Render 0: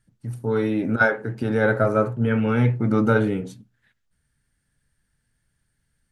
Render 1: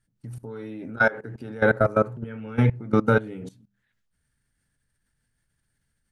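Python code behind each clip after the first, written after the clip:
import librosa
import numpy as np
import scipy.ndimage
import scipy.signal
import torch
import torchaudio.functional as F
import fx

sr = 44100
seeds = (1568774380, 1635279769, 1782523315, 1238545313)

y = fx.hum_notches(x, sr, base_hz=50, count=4)
y = fx.level_steps(y, sr, step_db=19)
y = F.gain(torch.from_numpy(y), 2.0).numpy()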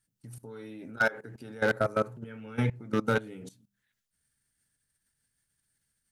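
y = fx.high_shelf(x, sr, hz=3600.0, db=12.0)
y = 10.0 ** (-9.0 / 20.0) * (np.abs((y / 10.0 ** (-9.0 / 20.0) + 3.0) % 4.0 - 2.0) - 1.0)
y = fx.low_shelf(y, sr, hz=63.0, db=-8.5)
y = F.gain(torch.from_numpy(y), -7.0).numpy()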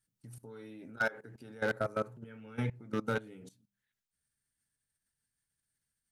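y = fx.rider(x, sr, range_db=3, speed_s=2.0)
y = F.gain(torch.from_numpy(y), -6.5).numpy()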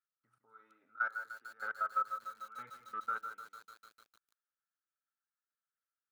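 y = fx.bandpass_q(x, sr, hz=1300.0, q=12.0)
y = y + 10.0 ** (-11.0 / 20.0) * np.pad(y, (int(160 * sr / 1000.0), 0))[:len(y)]
y = fx.echo_crushed(y, sr, ms=149, feedback_pct=80, bits=10, wet_db=-12)
y = F.gain(torch.from_numpy(y), 7.5).numpy()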